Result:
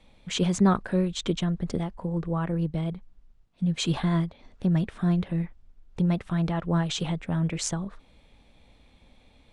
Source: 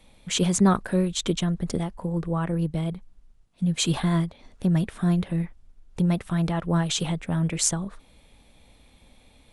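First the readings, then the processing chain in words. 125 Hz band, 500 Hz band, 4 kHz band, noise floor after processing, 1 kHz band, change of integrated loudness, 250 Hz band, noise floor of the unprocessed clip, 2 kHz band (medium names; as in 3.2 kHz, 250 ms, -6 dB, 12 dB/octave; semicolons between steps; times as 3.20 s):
-1.5 dB, -1.5 dB, -3.5 dB, -60 dBFS, -2.0 dB, -2.0 dB, -1.5 dB, -58 dBFS, -2.5 dB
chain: distance through air 79 m; trim -1.5 dB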